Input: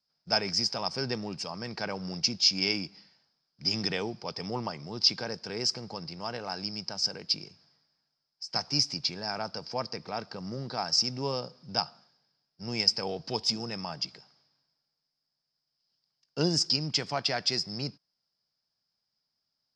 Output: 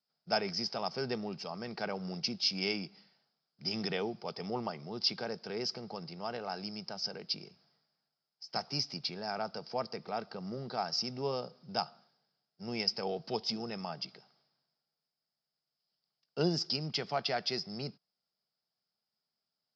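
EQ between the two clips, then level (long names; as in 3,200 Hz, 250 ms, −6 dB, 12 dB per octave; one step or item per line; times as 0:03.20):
loudspeaker in its box 200–4,900 Hz, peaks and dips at 290 Hz −9 dB, 530 Hz −4 dB, 990 Hz −7 dB, 1,700 Hz −5 dB, 2,400 Hz −3 dB
high-shelf EQ 2,400 Hz −7.5 dB
+2.0 dB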